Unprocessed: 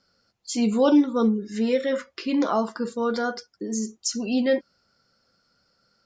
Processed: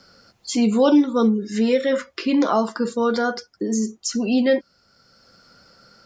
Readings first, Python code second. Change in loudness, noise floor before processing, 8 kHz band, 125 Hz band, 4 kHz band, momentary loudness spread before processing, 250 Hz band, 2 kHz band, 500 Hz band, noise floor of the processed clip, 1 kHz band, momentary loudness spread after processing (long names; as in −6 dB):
+3.5 dB, −70 dBFS, +1.5 dB, can't be measured, +3.5 dB, 11 LU, +3.5 dB, +4.5 dB, +4.0 dB, −63 dBFS, +4.0 dB, 9 LU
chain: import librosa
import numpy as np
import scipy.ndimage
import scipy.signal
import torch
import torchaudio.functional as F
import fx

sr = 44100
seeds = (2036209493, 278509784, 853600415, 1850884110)

y = fx.band_squash(x, sr, depth_pct=40)
y = y * 10.0 ** (4.0 / 20.0)